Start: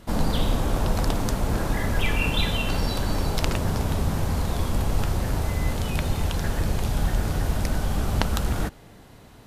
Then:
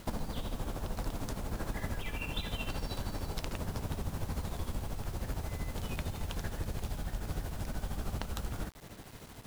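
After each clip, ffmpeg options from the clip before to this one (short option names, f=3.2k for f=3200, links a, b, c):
-af "acompressor=threshold=-31dB:ratio=10,tremolo=f=13:d=0.63,acrusher=bits=8:mix=0:aa=0.000001,volume=1dB"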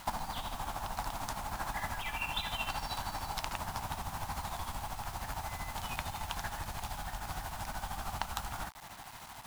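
-af "lowshelf=f=620:t=q:w=3:g=-9.5,volume=3.5dB"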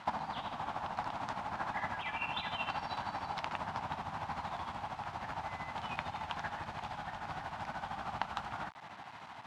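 -af "highpass=130,lowpass=2.9k,volume=1dB"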